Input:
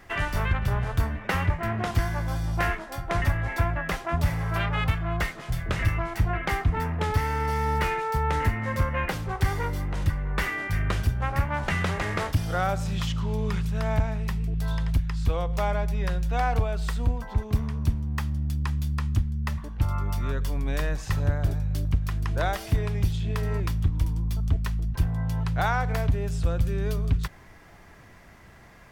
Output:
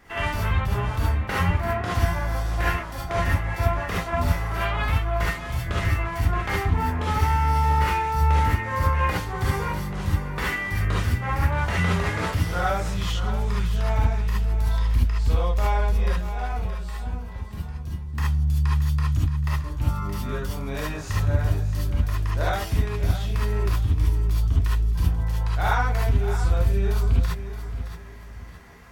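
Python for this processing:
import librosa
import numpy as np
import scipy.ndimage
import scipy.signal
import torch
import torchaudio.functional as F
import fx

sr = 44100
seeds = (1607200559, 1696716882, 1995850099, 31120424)

p1 = fx.comb_fb(x, sr, f0_hz=180.0, decay_s=0.19, harmonics='all', damping=0.0, mix_pct=80, at=(16.12, 18.14))
p2 = p1 + fx.echo_feedback(p1, sr, ms=622, feedback_pct=33, wet_db=-11.5, dry=0)
p3 = fx.rev_gated(p2, sr, seeds[0], gate_ms=90, shape='rising', drr_db=-5.5)
y = p3 * 10.0 ** (-4.5 / 20.0)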